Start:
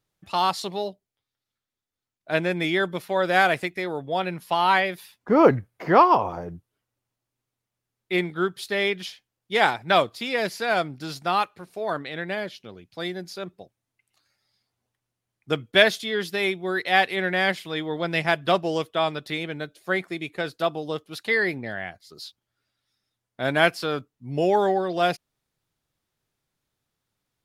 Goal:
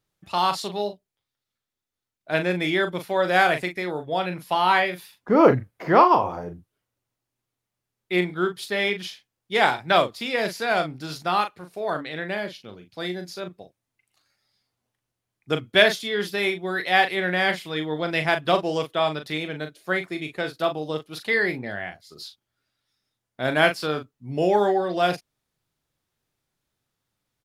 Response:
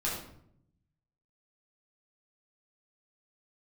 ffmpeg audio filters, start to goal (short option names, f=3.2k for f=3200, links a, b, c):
-filter_complex "[0:a]asplit=2[a][b];[b]adelay=39,volume=-8dB[c];[a][c]amix=inputs=2:normalize=0"